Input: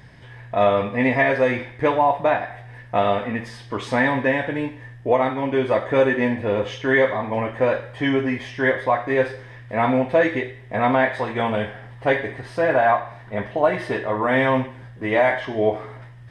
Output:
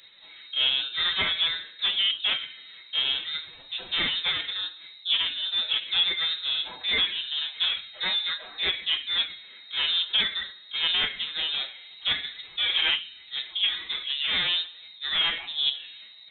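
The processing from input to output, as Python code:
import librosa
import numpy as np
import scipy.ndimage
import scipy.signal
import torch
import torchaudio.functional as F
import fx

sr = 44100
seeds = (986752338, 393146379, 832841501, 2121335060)

y = fx.self_delay(x, sr, depth_ms=0.17)
y = fx.pitch_keep_formants(y, sr, semitones=5.0)
y = fx.freq_invert(y, sr, carrier_hz=3900)
y = y * 10.0 ** (-6.5 / 20.0)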